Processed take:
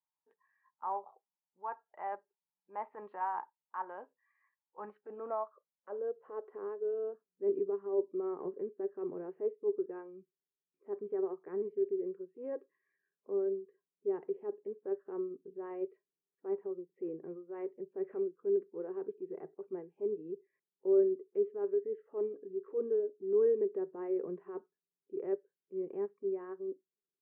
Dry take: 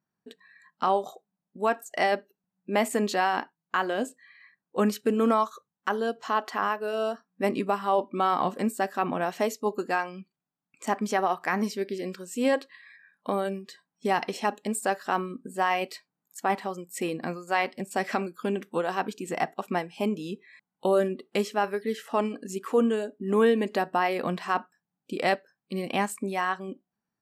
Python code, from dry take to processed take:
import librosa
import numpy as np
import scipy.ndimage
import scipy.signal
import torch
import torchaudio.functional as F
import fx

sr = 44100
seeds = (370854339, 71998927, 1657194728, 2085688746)

y = fx.transient(x, sr, attack_db=-8, sustain_db=-2)
y = fx.filter_sweep_bandpass(y, sr, from_hz=890.0, to_hz=400.0, start_s=4.8, end_s=6.72, q=6.0)
y = fx.cabinet(y, sr, low_hz=160.0, low_slope=12, high_hz=2100.0, hz=(160.0, 240.0, 390.0, 710.0), db=(10, -7, 4, -8))